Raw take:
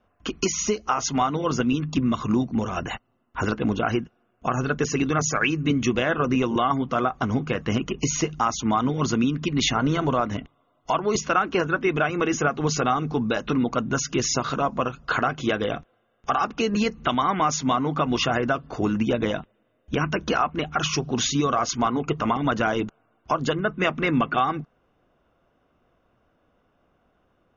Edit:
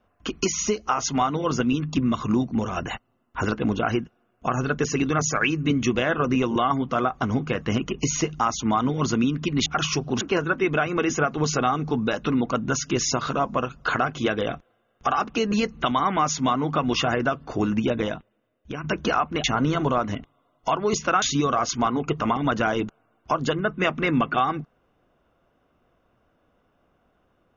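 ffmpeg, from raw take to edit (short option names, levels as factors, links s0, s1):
-filter_complex "[0:a]asplit=6[s0][s1][s2][s3][s4][s5];[s0]atrim=end=9.662[s6];[s1]atrim=start=20.668:end=21.222[s7];[s2]atrim=start=11.438:end=20.07,asetpts=PTS-STARTPTS,afade=t=out:st=7.622:d=1.01:silence=0.298538[s8];[s3]atrim=start=20.07:end=20.672,asetpts=PTS-STARTPTS,afade=t=in:d=0.004:c=hsin:silence=0.298538[s9];[s4]atrim=start=9.658:end=11.442[s10];[s5]atrim=start=21.218[s11];[s6][s7]acrossfade=d=0.004:c1=hsin:c2=hsin[s12];[s8][s9]concat=n=2:v=0:a=1[s13];[s12][s13]acrossfade=d=0.004:c1=hsin:c2=hsin[s14];[s14][s10]acrossfade=d=0.004:c1=hsin:c2=hsin[s15];[s15][s11]acrossfade=d=0.004:c1=hsin:c2=hsin"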